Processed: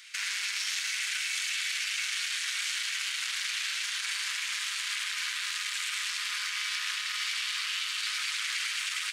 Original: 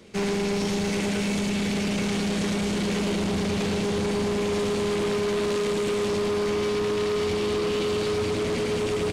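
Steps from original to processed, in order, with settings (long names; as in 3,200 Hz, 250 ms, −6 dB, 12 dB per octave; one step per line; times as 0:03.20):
Butterworth high-pass 1,500 Hz 36 dB per octave
brickwall limiter −30 dBFS, peak gain reduction 9.5 dB
level +8 dB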